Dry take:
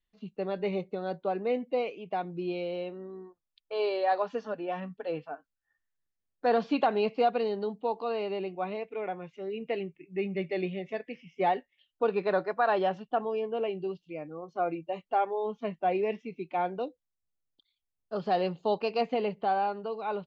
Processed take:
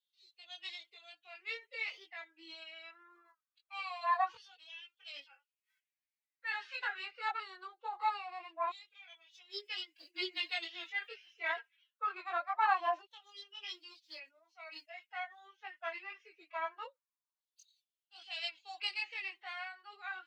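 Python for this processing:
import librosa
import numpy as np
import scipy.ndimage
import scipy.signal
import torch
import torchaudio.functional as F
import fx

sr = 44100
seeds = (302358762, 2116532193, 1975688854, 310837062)

y = fx.filter_lfo_highpass(x, sr, shape='saw_down', hz=0.23, low_hz=950.0, high_hz=3700.0, q=5.6)
y = fx.pitch_keep_formants(y, sr, semitones=10.5)
y = fx.chorus_voices(y, sr, voices=6, hz=0.18, base_ms=20, depth_ms=2.2, mix_pct=50)
y = y * librosa.db_to_amplitude(-3.0)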